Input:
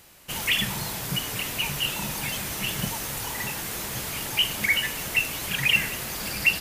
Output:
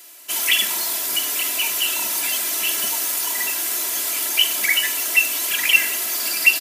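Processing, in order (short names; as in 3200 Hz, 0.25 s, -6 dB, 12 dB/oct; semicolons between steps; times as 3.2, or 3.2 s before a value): Bessel high-pass 350 Hz, order 4; high shelf 4100 Hz +10 dB; comb 3 ms, depth 84%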